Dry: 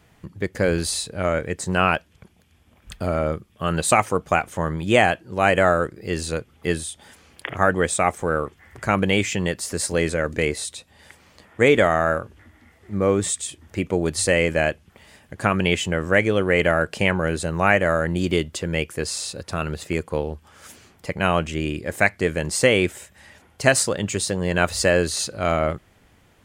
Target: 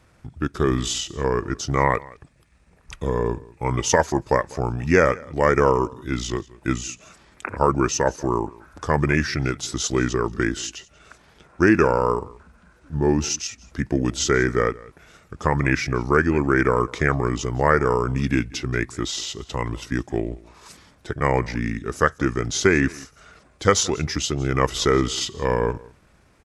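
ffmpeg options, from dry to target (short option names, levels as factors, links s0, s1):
-af "aecho=1:1:181:0.0794,asetrate=33038,aresample=44100,atempo=1.33484"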